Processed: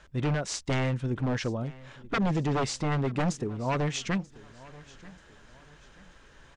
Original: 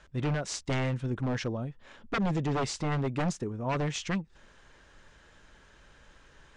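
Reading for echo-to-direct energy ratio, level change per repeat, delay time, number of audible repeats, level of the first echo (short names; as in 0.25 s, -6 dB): -20.5 dB, -8.5 dB, 0.935 s, 2, -21.0 dB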